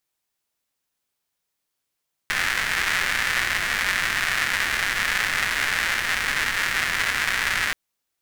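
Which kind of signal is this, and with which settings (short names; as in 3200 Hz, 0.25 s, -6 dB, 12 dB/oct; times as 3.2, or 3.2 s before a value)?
rain from filtered ticks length 5.43 s, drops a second 290, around 1800 Hz, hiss -13.5 dB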